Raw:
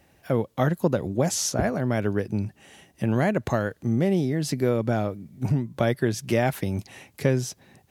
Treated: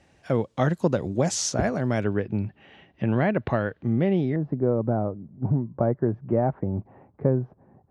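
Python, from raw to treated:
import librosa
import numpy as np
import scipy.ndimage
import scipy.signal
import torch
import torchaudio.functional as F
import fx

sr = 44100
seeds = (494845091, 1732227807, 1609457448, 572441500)

y = fx.lowpass(x, sr, hz=fx.steps((0.0, 8300.0), (2.04, 3300.0), (4.36, 1100.0)), slope=24)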